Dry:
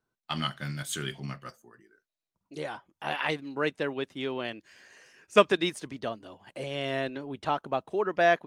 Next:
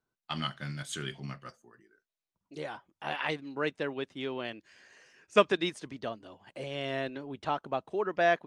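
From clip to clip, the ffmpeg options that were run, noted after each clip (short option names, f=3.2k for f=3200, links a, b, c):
-af "lowpass=8.1k,volume=-3dB"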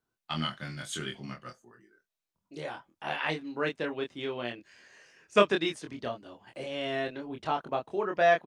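-filter_complex "[0:a]asplit=2[a][b];[b]adelay=25,volume=-4dB[c];[a][c]amix=inputs=2:normalize=0"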